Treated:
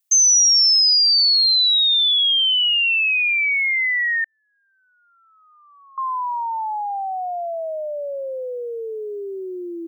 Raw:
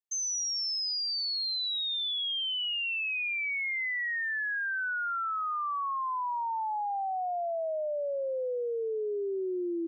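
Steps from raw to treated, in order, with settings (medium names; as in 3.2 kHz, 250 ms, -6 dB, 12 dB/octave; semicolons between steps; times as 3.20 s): 4.24–5.98 s: steep low-pass 690 Hz 36 dB/octave; tilt EQ +4 dB/octave; trim +8 dB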